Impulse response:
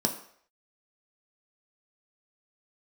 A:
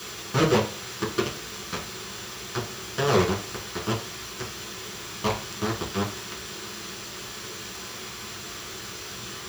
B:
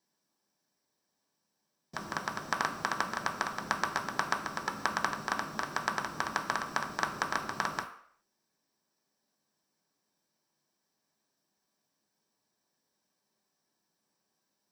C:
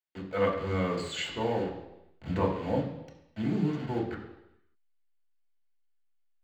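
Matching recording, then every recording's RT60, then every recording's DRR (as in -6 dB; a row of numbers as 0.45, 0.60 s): B; 0.40, 0.60, 0.90 s; -6.5, 2.5, -3.0 dB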